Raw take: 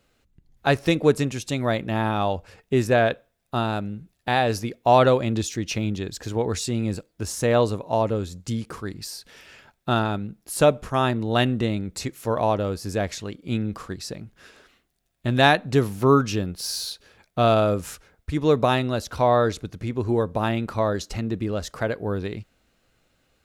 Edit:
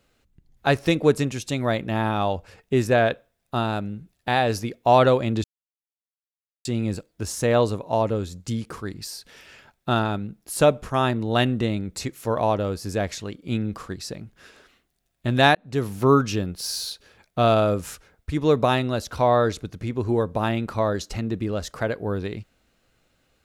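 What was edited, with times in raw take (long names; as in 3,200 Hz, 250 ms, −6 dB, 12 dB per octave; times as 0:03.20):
0:05.44–0:06.65: silence
0:15.55–0:15.96: fade in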